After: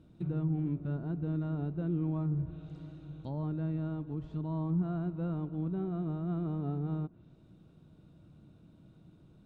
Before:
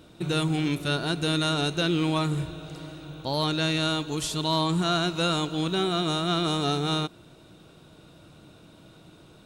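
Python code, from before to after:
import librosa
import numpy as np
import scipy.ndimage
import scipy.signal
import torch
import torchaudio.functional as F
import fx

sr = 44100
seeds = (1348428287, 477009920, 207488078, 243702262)

y = fx.env_lowpass_down(x, sr, base_hz=1100.0, full_db=-25.0)
y = fx.curve_eq(y, sr, hz=(210.0, 430.0, 5300.0), db=(0, -10, -19))
y = y * librosa.db_to_amplitude(-3.5)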